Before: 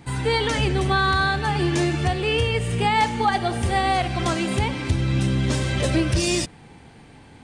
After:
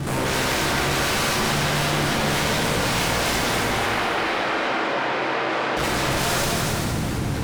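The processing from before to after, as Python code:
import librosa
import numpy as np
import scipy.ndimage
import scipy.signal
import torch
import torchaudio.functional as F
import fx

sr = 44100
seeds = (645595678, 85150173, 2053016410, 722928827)

y = fx.delta_mod(x, sr, bps=64000, step_db=-31.0)
y = fx.tilt_shelf(y, sr, db=7.0, hz=680.0)
y = np.sign(y) * np.maximum(np.abs(y) - 10.0 ** (-36.5 / 20.0), 0.0)
y = fx.tube_stage(y, sr, drive_db=17.0, bias=0.6)
y = 10.0 ** (-33.0 / 20.0) * (np.abs((y / 10.0 ** (-33.0 / 20.0) + 3.0) % 4.0 - 2.0) - 1.0)
y = fx.bandpass_edges(y, sr, low_hz=360.0, high_hz=2900.0, at=(3.59, 5.77))
y = y + 10.0 ** (-6.0 / 20.0) * np.pad(y, (int(267 * sr / 1000.0), 0))[:len(y)]
y = fx.rev_plate(y, sr, seeds[0], rt60_s=2.3, hf_ratio=0.9, predelay_ms=0, drr_db=-4.5)
y = fx.env_flatten(y, sr, amount_pct=50)
y = y * 10.0 ** (8.0 / 20.0)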